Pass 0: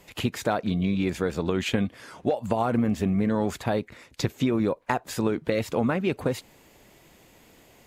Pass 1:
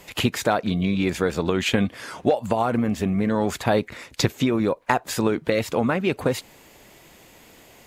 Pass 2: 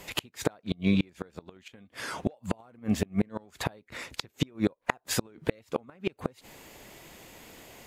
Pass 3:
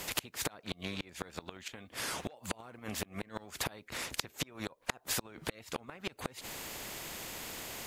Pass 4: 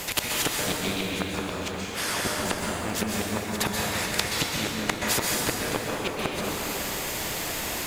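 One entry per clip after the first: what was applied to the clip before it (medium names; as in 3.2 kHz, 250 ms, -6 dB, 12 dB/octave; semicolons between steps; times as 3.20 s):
bass shelf 480 Hz -4 dB; gain riding within 5 dB 0.5 s; trim +6 dB
inverted gate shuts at -12 dBFS, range -32 dB
compression, threshold -28 dBFS, peak gain reduction 9 dB; spectrum-flattening compressor 2:1; trim -1.5 dB
in parallel at -10 dB: word length cut 8-bit, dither none; on the sum: plate-style reverb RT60 3.3 s, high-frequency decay 0.65×, pre-delay 115 ms, DRR -3.5 dB; trim +5.5 dB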